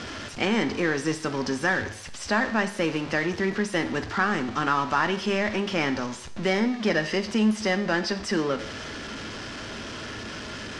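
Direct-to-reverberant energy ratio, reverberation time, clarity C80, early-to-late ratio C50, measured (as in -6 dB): 9.0 dB, 0.65 s, 16.0 dB, 13.5 dB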